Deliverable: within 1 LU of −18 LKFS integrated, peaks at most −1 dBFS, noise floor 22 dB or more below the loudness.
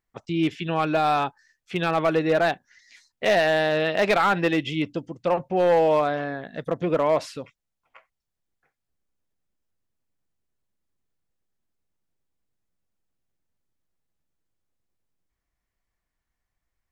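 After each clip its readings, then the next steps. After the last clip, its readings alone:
share of clipped samples 0.4%; peaks flattened at −13.5 dBFS; integrated loudness −23.5 LKFS; sample peak −13.5 dBFS; target loudness −18.0 LKFS
→ clipped peaks rebuilt −13.5 dBFS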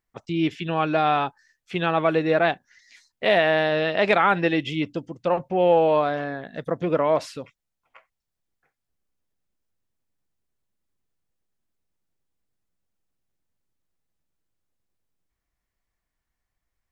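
share of clipped samples 0.0%; integrated loudness −22.5 LKFS; sample peak −4.5 dBFS; target loudness −18.0 LKFS
→ level +4.5 dB
brickwall limiter −1 dBFS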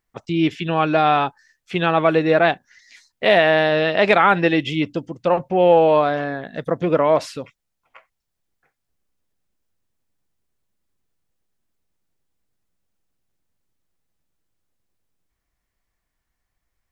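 integrated loudness −18.0 LKFS; sample peak −1.0 dBFS; background noise floor −78 dBFS

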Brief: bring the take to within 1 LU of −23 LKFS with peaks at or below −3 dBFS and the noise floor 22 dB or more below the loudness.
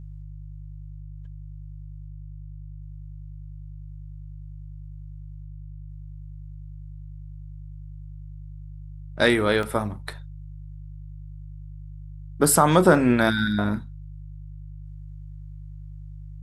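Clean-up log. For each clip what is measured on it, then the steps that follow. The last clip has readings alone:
number of dropouts 1; longest dropout 2.1 ms; mains hum 50 Hz; hum harmonics up to 150 Hz; level of the hum −36 dBFS; integrated loudness −21.0 LKFS; sample peak −2.5 dBFS; target loudness −23.0 LKFS
→ repair the gap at 0:09.63, 2.1 ms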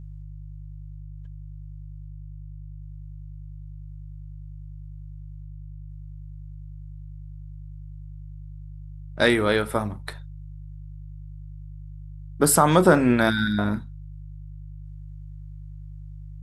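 number of dropouts 0; mains hum 50 Hz; hum harmonics up to 150 Hz; level of the hum −36 dBFS
→ hum removal 50 Hz, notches 3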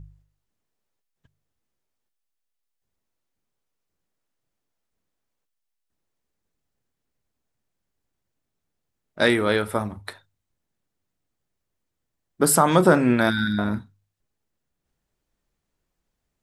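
mains hum none found; integrated loudness −20.5 LKFS; sample peak −2.0 dBFS; target loudness −23.0 LKFS
→ level −2.5 dB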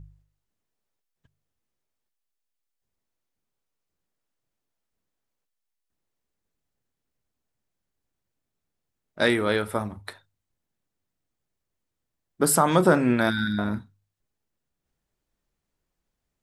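integrated loudness −23.0 LKFS; sample peak −4.5 dBFS; background noise floor −83 dBFS

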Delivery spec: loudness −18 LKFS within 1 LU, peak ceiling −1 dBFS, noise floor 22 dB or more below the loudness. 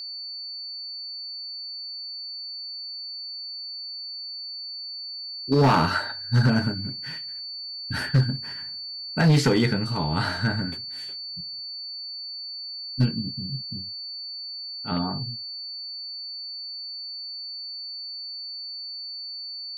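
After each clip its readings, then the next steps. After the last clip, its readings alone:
share of clipped samples 0.5%; peaks flattened at −13.5 dBFS; interfering tone 4,500 Hz; level of the tone −33 dBFS; integrated loudness −28.0 LKFS; sample peak −13.5 dBFS; target loudness −18.0 LKFS
→ clipped peaks rebuilt −13.5 dBFS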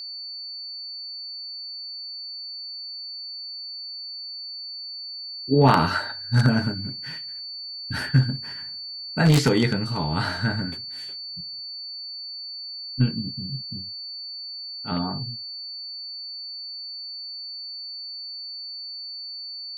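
share of clipped samples 0.0%; interfering tone 4,500 Hz; level of the tone −33 dBFS
→ notch filter 4,500 Hz, Q 30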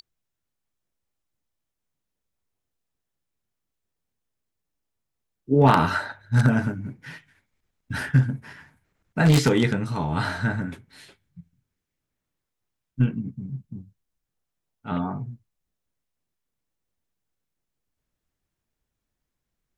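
interfering tone none found; integrated loudness −23.0 LKFS; sample peak −4.5 dBFS; target loudness −18.0 LKFS
→ level +5 dB
brickwall limiter −1 dBFS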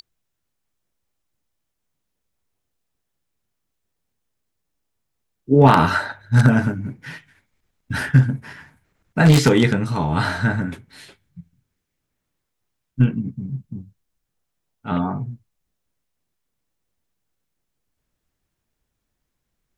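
integrated loudness −18.5 LKFS; sample peak −1.0 dBFS; background noise floor −78 dBFS

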